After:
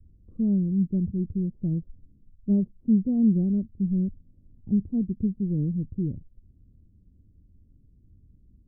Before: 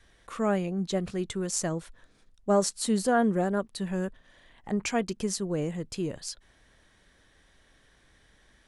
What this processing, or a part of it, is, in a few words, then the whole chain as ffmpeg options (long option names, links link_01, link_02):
the neighbour's flat through the wall: -af "lowpass=frequency=260:width=0.5412,lowpass=frequency=260:width=1.3066,equalizer=frequency=87:width_type=o:width=0.77:gain=7.5,volume=7dB"